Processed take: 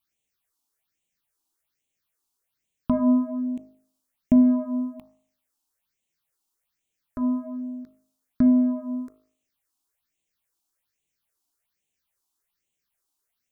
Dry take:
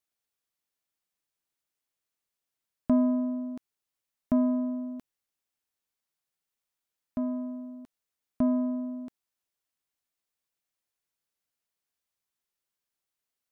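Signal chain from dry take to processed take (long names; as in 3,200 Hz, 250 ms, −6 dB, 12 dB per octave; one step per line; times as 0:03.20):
all-pass phaser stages 6, 1.2 Hz, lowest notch 130–1,400 Hz
hum removal 52.13 Hz, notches 26
every ending faded ahead of time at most 490 dB per second
level +8.5 dB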